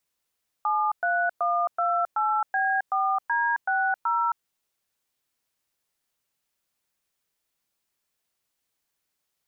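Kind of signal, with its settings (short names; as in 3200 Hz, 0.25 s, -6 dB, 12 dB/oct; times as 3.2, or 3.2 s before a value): DTMF "73128B4D60", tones 0.267 s, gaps 0.111 s, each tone -24 dBFS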